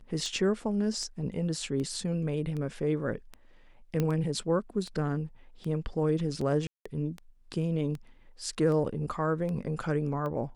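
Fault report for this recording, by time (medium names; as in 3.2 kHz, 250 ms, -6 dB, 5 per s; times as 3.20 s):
tick 78 rpm -26 dBFS
4.00 s: pop -16 dBFS
6.67–6.86 s: dropout 185 ms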